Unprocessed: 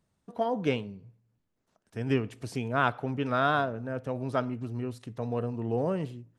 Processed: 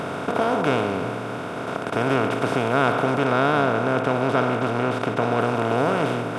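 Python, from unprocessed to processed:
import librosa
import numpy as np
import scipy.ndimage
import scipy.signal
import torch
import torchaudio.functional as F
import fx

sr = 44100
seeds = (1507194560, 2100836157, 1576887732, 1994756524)

y = fx.bin_compress(x, sr, power=0.2)
y = fx.high_shelf(y, sr, hz=8000.0, db=-6.0, at=(3.24, 5.4))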